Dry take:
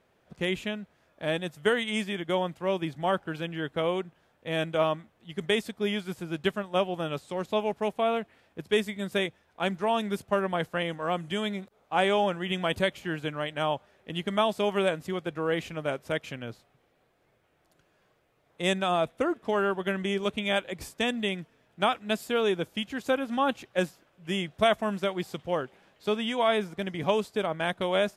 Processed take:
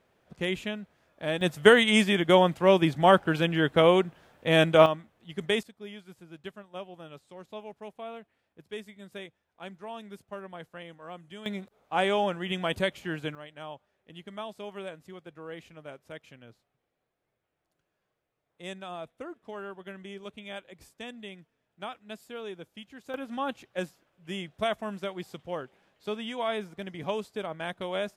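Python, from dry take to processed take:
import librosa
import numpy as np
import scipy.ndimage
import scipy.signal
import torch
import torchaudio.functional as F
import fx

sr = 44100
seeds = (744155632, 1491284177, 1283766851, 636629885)

y = fx.gain(x, sr, db=fx.steps((0.0, -1.0), (1.41, 8.0), (4.86, -1.0), (5.63, -14.0), (11.46, -1.5), (13.35, -13.5), (23.14, -6.0)))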